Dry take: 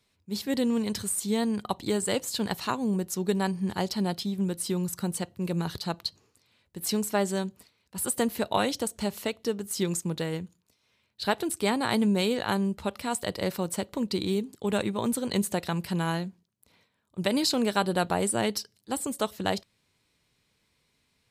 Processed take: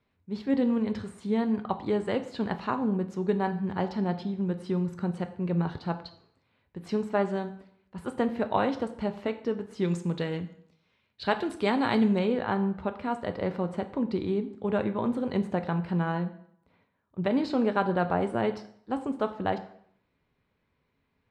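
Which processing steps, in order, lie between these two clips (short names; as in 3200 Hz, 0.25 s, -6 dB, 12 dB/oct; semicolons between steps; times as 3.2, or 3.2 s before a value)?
LPF 1900 Hz 12 dB/oct, from 9.84 s 3200 Hz, from 12.19 s 1700 Hz; plate-style reverb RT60 0.64 s, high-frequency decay 0.85×, DRR 8 dB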